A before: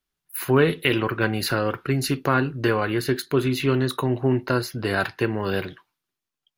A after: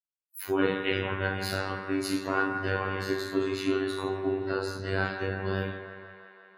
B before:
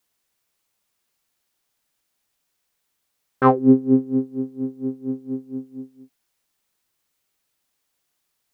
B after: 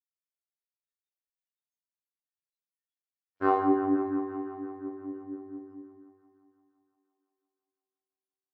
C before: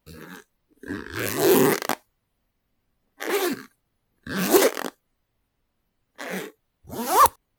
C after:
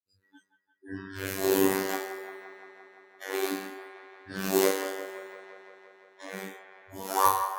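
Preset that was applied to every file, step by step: HPF 57 Hz; two-slope reverb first 0.62 s, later 2.5 s, from -18 dB, DRR -7 dB; robotiser 96.1 Hz; spectral noise reduction 29 dB; on a send: band-limited delay 0.172 s, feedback 73%, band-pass 1200 Hz, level -8 dB; on the sum: gain -12.5 dB

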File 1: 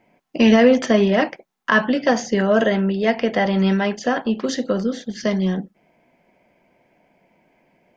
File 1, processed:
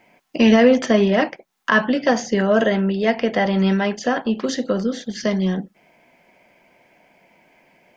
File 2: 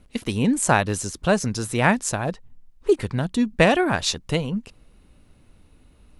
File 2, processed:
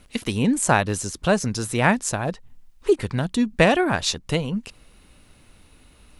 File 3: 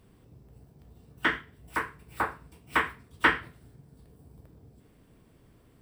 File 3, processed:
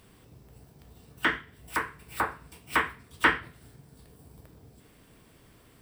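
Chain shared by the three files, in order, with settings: mismatched tape noise reduction encoder only

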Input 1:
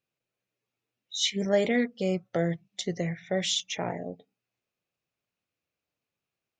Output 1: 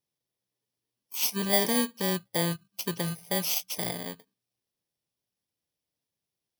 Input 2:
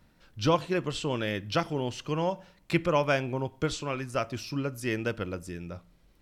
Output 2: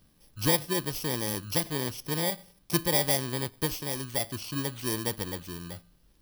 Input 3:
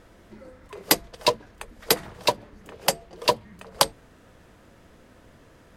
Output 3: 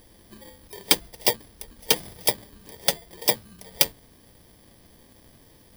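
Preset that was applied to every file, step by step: FFT order left unsorted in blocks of 32 samples; bell 3700 Hz +7.5 dB 0.69 oct; gain -1 dB

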